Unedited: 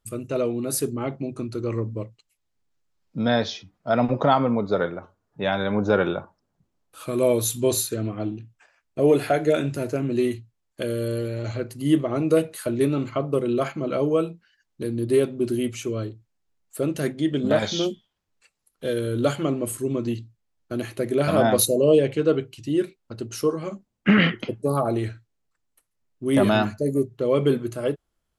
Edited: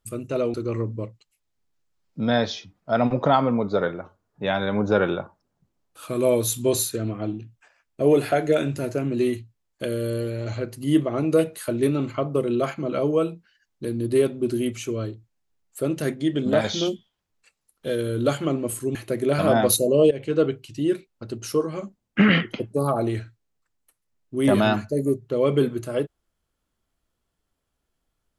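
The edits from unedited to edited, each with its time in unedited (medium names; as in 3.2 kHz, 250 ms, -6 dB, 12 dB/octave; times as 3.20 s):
0.54–1.52 s: delete
19.93–20.84 s: delete
22.00–22.26 s: fade in, from -15 dB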